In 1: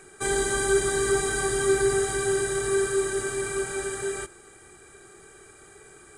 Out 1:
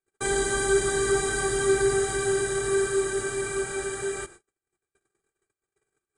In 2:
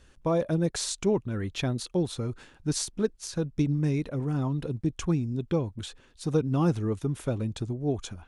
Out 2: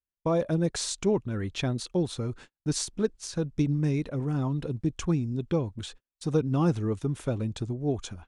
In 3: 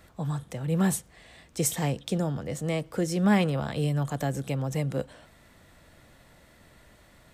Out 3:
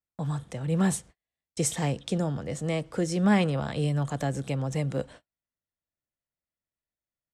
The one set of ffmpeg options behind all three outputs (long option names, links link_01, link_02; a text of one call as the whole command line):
ffmpeg -i in.wav -af "lowpass=frequency=10000:width=0.5412,lowpass=frequency=10000:width=1.3066,agate=range=-43dB:threshold=-45dB:ratio=16:detection=peak" out.wav